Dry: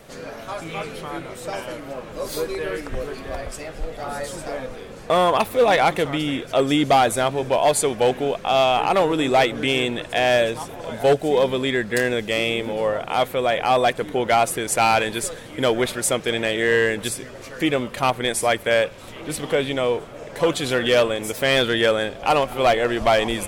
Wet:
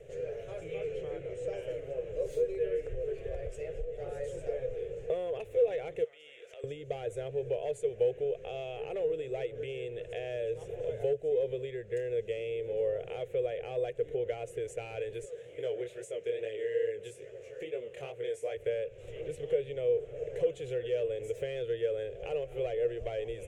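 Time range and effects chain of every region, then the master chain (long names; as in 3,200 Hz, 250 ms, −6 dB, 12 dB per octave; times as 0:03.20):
0:00.81–0:01.58: low-pass filter 8,800 Hz 24 dB per octave + notch filter 3,700 Hz, Q 28
0:06.04–0:06.64: high-pass filter 1,000 Hz + downward compressor 8 to 1, threshold −35 dBFS
0:15.25–0:18.57: high-pass filter 300 Hz 6 dB per octave + chorus effect 2.4 Hz, delay 17.5 ms, depth 7.5 ms
whole clip: flat-topped bell 800 Hz −8 dB; downward compressor 5 to 1, threshold −31 dBFS; drawn EQ curve 130 Hz 0 dB, 260 Hz −26 dB, 470 Hz +14 dB, 970 Hz −17 dB, 2,800 Hz −8 dB, 4,600 Hz −25 dB, 6,800 Hz −11 dB, 12,000 Hz −24 dB; level −3.5 dB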